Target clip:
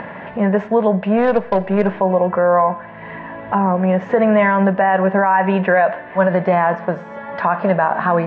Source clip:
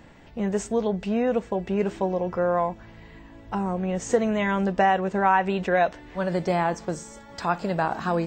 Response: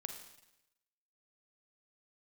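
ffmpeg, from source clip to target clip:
-filter_complex "[0:a]highpass=170,equalizer=f=190:t=q:w=4:g=5,equalizer=f=310:t=q:w=4:g=-8,equalizer=f=610:t=q:w=4:g=8,equalizer=f=1k:t=q:w=4:g=8,equalizer=f=1.7k:t=q:w=4:g=7,lowpass=f=2.6k:w=0.5412,lowpass=f=2.6k:w=1.3066,asplit=3[a][b][c];[a]afade=t=out:st=1.17:d=0.02[d];[b]aeval=exprs='0.299*(cos(1*acos(clip(val(0)/0.299,-1,1)))-cos(1*PI/2))+0.0188*(cos(4*acos(clip(val(0)/0.299,-1,1)))-cos(4*PI/2))+0.0106*(cos(7*acos(clip(val(0)/0.299,-1,1)))-cos(7*PI/2))':c=same,afade=t=in:st=1.17:d=0.02,afade=t=out:st=1.86:d=0.02[e];[c]afade=t=in:st=1.86:d=0.02[f];[d][e][f]amix=inputs=3:normalize=0,asplit=2[g][h];[1:a]atrim=start_sample=2205,asetrate=57330,aresample=44100[i];[h][i]afir=irnorm=-1:irlink=0,volume=-3.5dB[j];[g][j]amix=inputs=2:normalize=0,acompressor=mode=upward:threshold=-28dB:ratio=2.5,alimiter=level_in=10.5dB:limit=-1dB:release=50:level=0:latency=1,volume=-4.5dB"

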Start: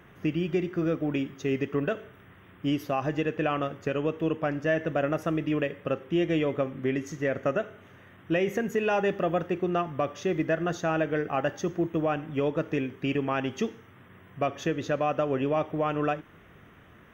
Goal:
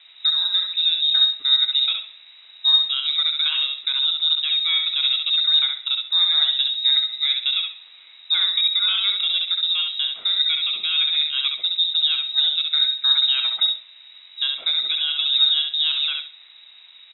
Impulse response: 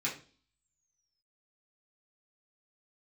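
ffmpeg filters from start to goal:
-filter_complex "[0:a]equalizer=f=250:t=o:w=0.85:g=12.5,asplit=2[a][b];[b]aecho=0:1:66|132|198:0.596|0.137|0.0315[c];[a][c]amix=inputs=2:normalize=0,lowpass=f=3.4k:t=q:w=0.5098,lowpass=f=3.4k:t=q:w=0.6013,lowpass=f=3.4k:t=q:w=0.9,lowpass=f=3.4k:t=q:w=2.563,afreqshift=-4000"

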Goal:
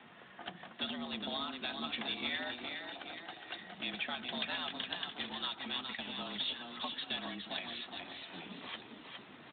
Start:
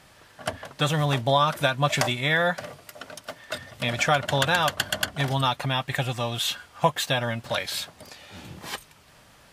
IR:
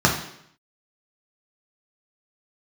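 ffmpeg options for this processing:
-filter_complex "[0:a]asplit=3[a][b][c];[a]afade=t=out:st=5.1:d=0.02[d];[b]lowshelf=f=320:g=-7.5,afade=t=in:st=5.1:d=0.02,afade=t=out:st=6.12:d=0.02[e];[c]afade=t=in:st=6.12:d=0.02[f];[d][e][f]amix=inputs=3:normalize=0,asplit=3[g][h][i];[g]afade=t=out:st=7.47:d=0.02[j];[h]bandreject=f=60:t=h:w=6,bandreject=f=120:t=h:w=6,bandreject=f=180:t=h:w=6,afade=t=in:st=7.47:d=0.02,afade=t=out:st=8.56:d=0.02[k];[i]afade=t=in:st=8.56:d=0.02[l];[j][k][l]amix=inputs=3:normalize=0,asplit=2[m][n];[n]acompressor=threshold=-35dB:ratio=6,volume=-2.5dB[o];[m][o]amix=inputs=2:normalize=0,afreqshift=89,acrossover=split=120|3000[p][q][r];[q]acompressor=threshold=-43dB:ratio=2.5[s];[p][s][r]amix=inputs=3:normalize=0,asoftclip=type=tanh:threshold=-14.5dB,asplit=8[t][u][v][w][x][y][z][aa];[u]adelay=413,afreqshift=33,volume=-5.5dB[ab];[v]adelay=826,afreqshift=66,volume=-11.2dB[ac];[w]adelay=1239,afreqshift=99,volume=-16.9dB[ad];[x]adelay=1652,afreqshift=132,volume=-22.5dB[ae];[y]adelay=2065,afreqshift=165,volume=-28.2dB[af];[z]adelay=2478,afreqshift=198,volume=-33.9dB[ag];[aa]adelay=2891,afreqshift=231,volume=-39.6dB[ah];[t][ab][ac][ad][ae][af][ag][ah]amix=inputs=8:normalize=0,asplit=2[ai][aj];[1:a]atrim=start_sample=2205,adelay=79[ak];[aj][ak]afir=irnorm=-1:irlink=0,volume=-38dB[al];[ai][al]amix=inputs=2:normalize=0,volume=-6.5dB" -ar 8000 -c:a libspeex -b:a 15k

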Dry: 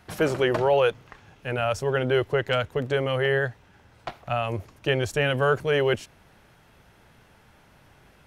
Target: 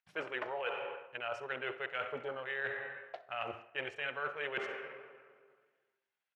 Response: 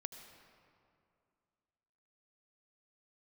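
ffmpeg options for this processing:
-filter_complex "[0:a]acompressor=mode=upward:threshold=-42dB:ratio=2.5,agate=range=-26dB:threshold=-40dB:ratio=16:detection=peak,afwtdn=0.0316,aecho=1:1:77:0.141,asplit=2[a][b];[1:a]atrim=start_sample=2205,lowshelf=f=120:g=-12[c];[b][c]afir=irnorm=-1:irlink=0,volume=1.5dB[d];[a][d]amix=inputs=2:normalize=0,atempo=1.3,lowpass=2.7k,aderivative,bandreject=f=56.54:t=h:w=4,bandreject=f=113.08:t=h:w=4,bandreject=f=169.62:t=h:w=4,bandreject=f=226.16:t=h:w=4,bandreject=f=282.7:t=h:w=4,bandreject=f=339.24:t=h:w=4,bandreject=f=395.78:t=h:w=4,bandreject=f=452.32:t=h:w=4,bandreject=f=508.86:t=h:w=4,bandreject=f=565.4:t=h:w=4,bandreject=f=621.94:t=h:w=4,bandreject=f=678.48:t=h:w=4,bandreject=f=735.02:t=h:w=4,bandreject=f=791.56:t=h:w=4,bandreject=f=848.1:t=h:w=4,bandreject=f=904.64:t=h:w=4,bandreject=f=961.18:t=h:w=4,bandreject=f=1.01772k:t=h:w=4,bandreject=f=1.07426k:t=h:w=4,bandreject=f=1.1308k:t=h:w=4,bandreject=f=1.18734k:t=h:w=4,bandreject=f=1.24388k:t=h:w=4,bandreject=f=1.30042k:t=h:w=4,bandreject=f=1.35696k:t=h:w=4,areverse,acompressor=threshold=-51dB:ratio=5,areverse,volume=14dB"

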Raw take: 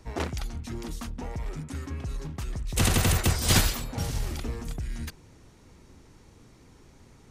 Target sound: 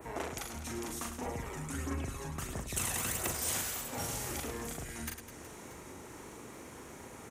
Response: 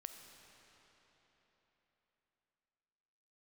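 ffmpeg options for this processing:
-filter_complex "[0:a]highpass=57,bass=f=250:g=-12,treble=f=4k:g=-14,acompressor=mode=upward:threshold=-41dB:ratio=2.5,aexciter=amount=7.8:drive=2.9:freq=6.5k,acompressor=threshold=-36dB:ratio=8,adynamicequalizer=threshold=0.002:dfrequency=5600:dqfactor=0.89:tfrequency=5600:tqfactor=0.89:attack=5:release=100:ratio=0.375:range=2.5:mode=boostabove:tftype=bell,aecho=1:1:40|104|206.4|370.2|632.4:0.631|0.398|0.251|0.158|0.1,asettb=1/sr,asplit=3[a][b][c];[a]atrim=end=1.264[d];[b]atrim=start=1.26:end=3.35,asetpts=PTS-STARTPTS,afade=t=in:d=0.004:c=qsin,afade=t=out:st=2.086:d=0.004:c=qsin,aphaser=in_gain=1:out_gain=1:delay=1.2:decay=0.41:speed=1.5:type=triangular[e];[c]atrim=start=3.346[f];[d][e]acrossfade=d=0.004:c1=hsin:c2=qsin[g];[g][f]acrossfade=d=0.004:c1=qsin:c2=hsin"

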